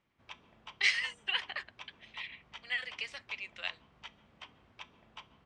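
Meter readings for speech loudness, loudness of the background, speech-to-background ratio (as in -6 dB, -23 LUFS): -35.0 LUFS, -53.0 LUFS, 18.0 dB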